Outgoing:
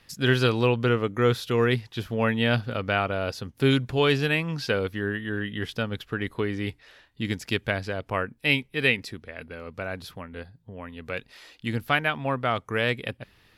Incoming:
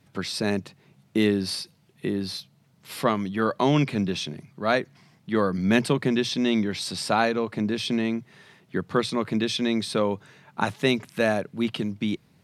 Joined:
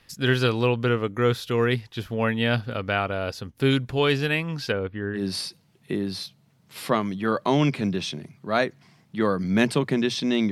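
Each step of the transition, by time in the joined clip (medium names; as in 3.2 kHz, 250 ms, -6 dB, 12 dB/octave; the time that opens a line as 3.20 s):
outgoing
4.72–5.25 s: distance through air 470 m
5.19 s: go over to incoming from 1.33 s, crossfade 0.12 s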